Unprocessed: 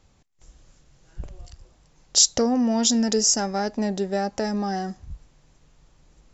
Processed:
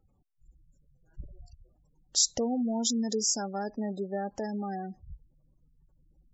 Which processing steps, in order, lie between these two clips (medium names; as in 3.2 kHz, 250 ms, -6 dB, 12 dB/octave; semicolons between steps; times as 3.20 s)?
spectral gate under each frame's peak -20 dB strong; trim -8 dB